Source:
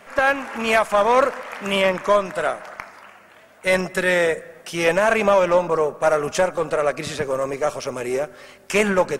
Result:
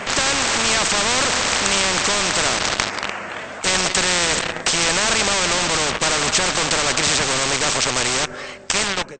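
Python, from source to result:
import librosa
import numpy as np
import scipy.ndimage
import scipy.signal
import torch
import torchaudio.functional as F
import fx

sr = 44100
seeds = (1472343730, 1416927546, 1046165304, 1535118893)

p1 = fx.fade_out_tail(x, sr, length_s=1.9)
p2 = fx.fuzz(p1, sr, gain_db=36.0, gate_db=-37.0)
p3 = p1 + (p2 * 10.0 ** (-10.0 / 20.0))
p4 = fx.brickwall_lowpass(p3, sr, high_hz=8500.0)
p5 = fx.spectral_comp(p4, sr, ratio=4.0)
y = p5 * 10.0 ** (2.5 / 20.0)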